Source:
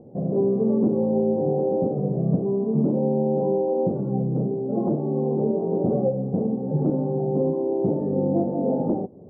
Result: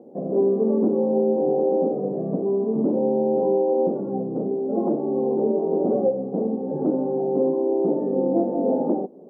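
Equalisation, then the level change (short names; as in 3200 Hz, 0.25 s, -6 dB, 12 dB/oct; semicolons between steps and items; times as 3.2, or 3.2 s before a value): HPF 230 Hz 24 dB/oct; +2.5 dB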